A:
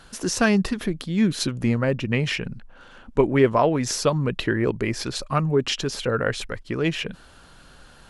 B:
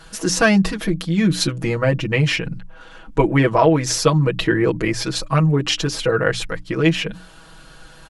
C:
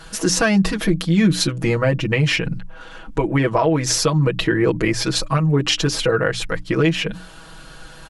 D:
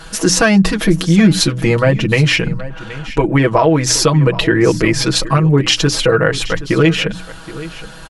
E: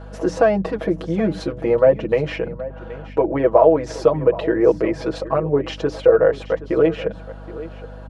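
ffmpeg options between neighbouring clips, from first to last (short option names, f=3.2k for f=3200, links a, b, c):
-af "bandreject=f=60:t=h:w=6,bandreject=f=120:t=h:w=6,bandreject=f=180:t=h:w=6,bandreject=f=240:t=h:w=6,bandreject=f=300:t=h:w=6,aecho=1:1:6.2:0.98,volume=2.5dB"
-af "alimiter=limit=-11dB:level=0:latency=1:release=302,volume=3.5dB"
-af "aecho=1:1:773:0.15,volume=5.5dB"
-af "bandpass=f=570:t=q:w=2.5:csg=0,aeval=exprs='val(0)+0.0112*(sin(2*PI*50*n/s)+sin(2*PI*2*50*n/s)/2+sin(2*PI*3*50*n/s)/3+sin(2*PI*4*50*n/s)/4+sin(2*PI*5*50*n/s)/5)':c=same,volume=3.5dB"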